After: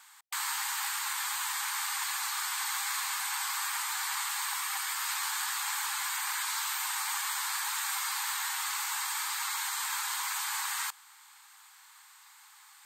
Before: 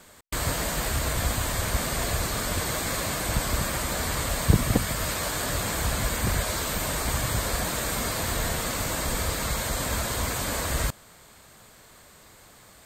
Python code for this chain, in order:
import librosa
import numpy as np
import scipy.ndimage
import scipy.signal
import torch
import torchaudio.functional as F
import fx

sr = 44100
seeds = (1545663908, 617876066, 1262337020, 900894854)

y = fx.brickwall_highpass(x, sr, low_hz=770.0)
y = y * 10.0 ** (-2.5 / 20.0)